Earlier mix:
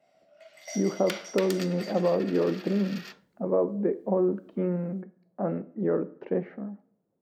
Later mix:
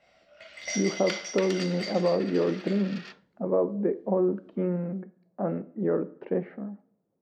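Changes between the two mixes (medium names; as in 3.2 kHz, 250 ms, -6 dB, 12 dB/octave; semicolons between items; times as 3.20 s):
first sound: remove ladder high-pass 580 Hz, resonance 65%; master: add low-pass 4.8 kHz 12 dB/octave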